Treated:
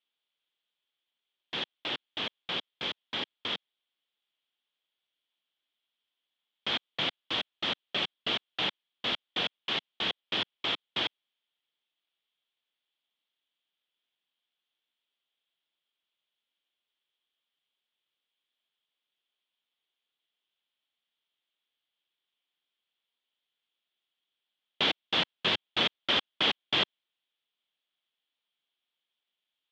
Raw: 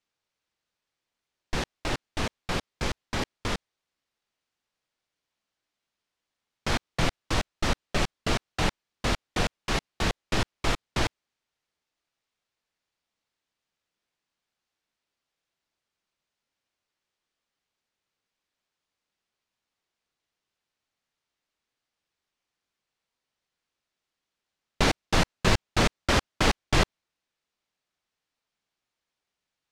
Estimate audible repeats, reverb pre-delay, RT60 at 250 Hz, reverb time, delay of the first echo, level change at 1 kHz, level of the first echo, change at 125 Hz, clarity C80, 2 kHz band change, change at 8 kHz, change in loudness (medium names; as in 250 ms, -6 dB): no echo, no reverb, no reverb, no reverb, no echo, -7.0 dB, no echo, -18.0 dB, no reverb, -3.5 dB, -18.0 dB, -2.0 dB